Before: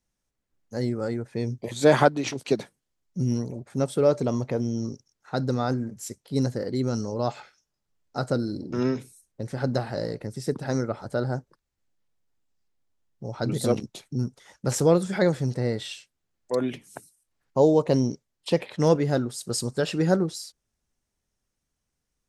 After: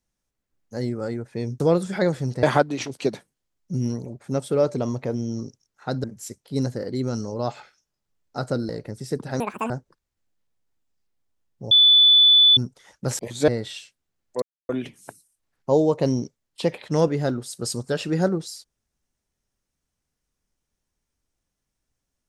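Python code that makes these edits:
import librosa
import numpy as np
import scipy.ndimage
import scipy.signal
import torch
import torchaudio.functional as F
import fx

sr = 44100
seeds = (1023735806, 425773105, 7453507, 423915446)

y = fx.edit(x, sr, fx.swap(start_s=1.6, length_s=0.29, other_s=14.8, other_length_s=0.83),
    fx.cut(start_s=5.5, length_s=0.34),
    fx.cut(start_s=8.49, length_s=1.56),
    fx.speed_span(start_s=10.76, length_s=0.55, speed=1.83),
    fx.bleep(start_s=13.32, length_s=0.86, hz=3480.0, db=-10.5),
    fx.insert_silence(at_s=16.57, length_s=0.27), tone=tone)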